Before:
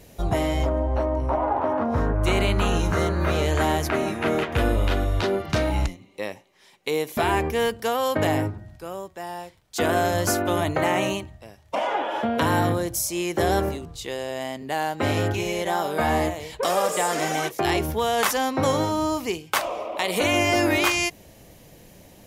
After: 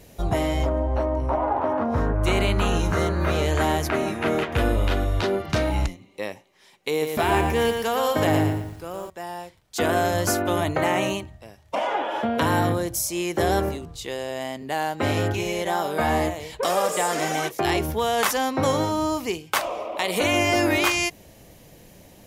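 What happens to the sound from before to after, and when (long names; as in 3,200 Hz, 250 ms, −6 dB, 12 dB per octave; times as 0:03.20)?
0:06.90–0:09.10: feedback echo at a low word length 116 ms, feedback 35%, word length 8 bits, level −5 dB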